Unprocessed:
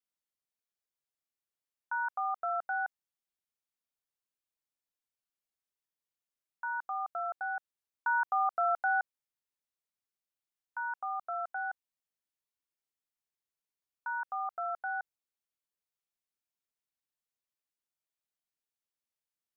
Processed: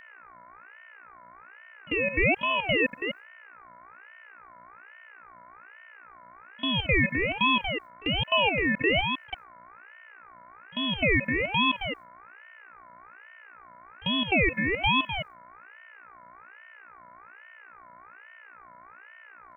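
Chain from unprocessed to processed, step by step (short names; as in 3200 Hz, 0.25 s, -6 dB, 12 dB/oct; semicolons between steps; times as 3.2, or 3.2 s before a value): reverse delay 0.173 s, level -9 dB; gate with hold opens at -41 dBFS; in parallel at +1.5 dB: vocal rider 0.5 s; on the sum: limiter -20.5 dBFS, peak gain reduction 5.5 dB; buzz 60 Hz, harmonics 22, -55 dBFS -5 dB/oct; robotiser 386 Hz; pre-echo 43 ms -21 dB; ring modulator with a swept carrier 1400 Hz, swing 30%, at 1.2 Hz; gain +8.5 dB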